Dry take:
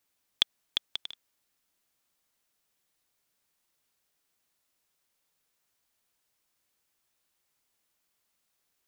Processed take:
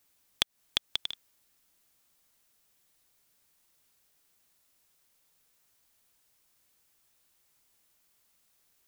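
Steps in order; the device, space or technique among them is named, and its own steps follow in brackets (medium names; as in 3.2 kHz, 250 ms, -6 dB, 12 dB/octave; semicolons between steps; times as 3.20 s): ASMR close-microphone chain (bass shelf 150 Hz +5 dB; compression 6:1, threshold -29 dBFS, peak gain reduction 11 dB; treble shelf 6.6 kHz +4.5 dB); trim +4.5 dB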